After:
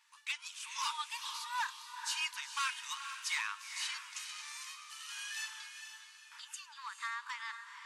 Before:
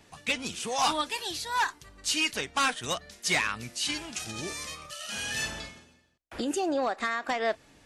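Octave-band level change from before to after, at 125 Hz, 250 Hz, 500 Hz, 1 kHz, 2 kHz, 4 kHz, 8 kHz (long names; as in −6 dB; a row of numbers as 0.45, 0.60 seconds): below −40 dB, below −40 dB, below −40 dB, −10.5 dB, −8.5 dB, −8.0 dB, −8.0 dB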